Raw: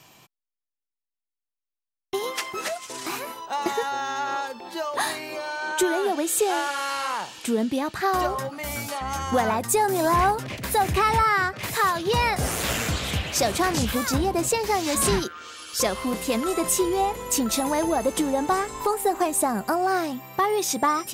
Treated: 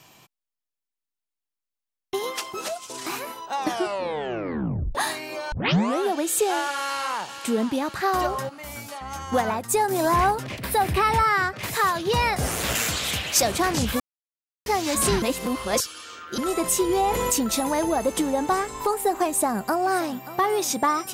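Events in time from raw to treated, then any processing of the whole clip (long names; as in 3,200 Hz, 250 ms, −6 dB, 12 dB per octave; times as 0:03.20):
0:02.38–0:02.98: parametric band 1,900 Hz −10 dB 0.52 octaves
0:03.53: tape stop 1.42 s
0:05.52: tape start 0.50 s
0:06.76–0:07.41: delay throw 520 ms, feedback 65%, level −11.5 dB
0:08.49–0:09.91: expander for the loud parts, over −31 dBFS
0:10.58–0:11.14: parametric band 6,700 Hz −9 dB 0.35 octaves
0:12.75–0:13.42: spectral tilt +2 dB per octave
0:14.00–0:14.66: silence
0:15.22–0:16.38: reverse
0:16.89–0:17.33: envelope flattener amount 70%
0:19.27–0:20.21: delay throw 580 ms, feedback 45%, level −15.5 dB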